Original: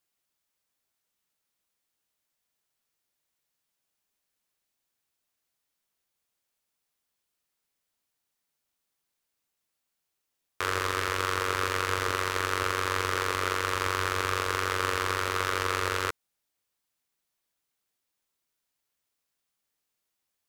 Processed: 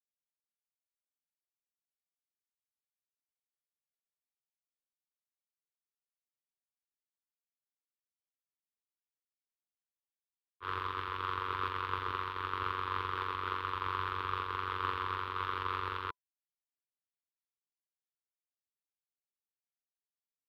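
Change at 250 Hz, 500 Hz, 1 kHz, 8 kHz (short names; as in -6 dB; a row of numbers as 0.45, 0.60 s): -10.5 dB, -14.0 dB, -4.5 dB, under -30 dB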